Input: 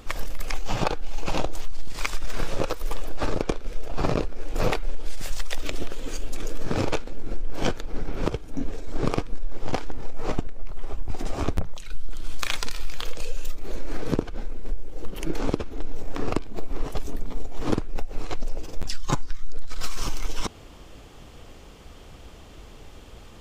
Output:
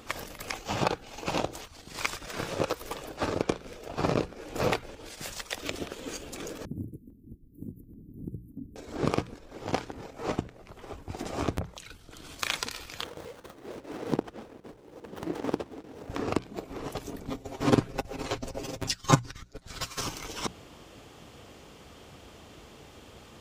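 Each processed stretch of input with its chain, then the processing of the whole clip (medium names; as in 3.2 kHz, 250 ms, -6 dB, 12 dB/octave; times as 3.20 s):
6.65–8.76 s: inverse Chebyshev band-stop 660–6200 Hz, stop band 50 dB + compression 4:1, threshold -26 dBFS
13.04–16.10 s: high-pass 170 Hz 6 dB/octave + square tremolo 2.5 Hz, depth 65%, duty 90% + sliding maximum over 17 samples
17.28–20.01 s: comb 7.5 ms, depth 96% + compressor with a negative ratio -14 dBFS, ratio -0.5
whole clip: high-pass 89 Hz 12 dB/octave; hum notches 60/120/180 Hz; trim -1 dB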